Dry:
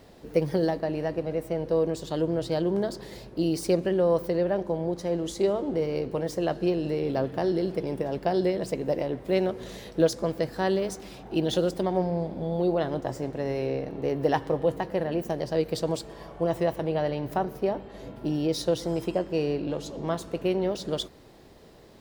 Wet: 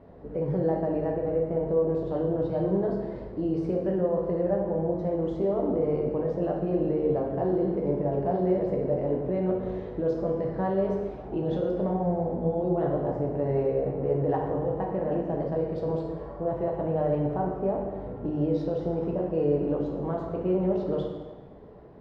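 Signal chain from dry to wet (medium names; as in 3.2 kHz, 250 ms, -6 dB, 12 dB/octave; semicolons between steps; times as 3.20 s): low-pass 1.1 kHz 12 dB/octave; peak limiter -21.5 dBFS, peak gain reduction 11 dB; plate-style reverb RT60 1.3 s, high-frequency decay 0.8×, DRR -1 dB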